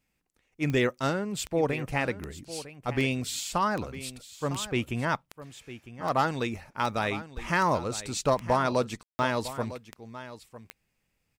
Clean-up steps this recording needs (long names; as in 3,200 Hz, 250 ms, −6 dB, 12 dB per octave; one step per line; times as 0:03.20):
click removal
ambience match 0:09.03–0:09.19
echo removal 954 ms −14.5 dB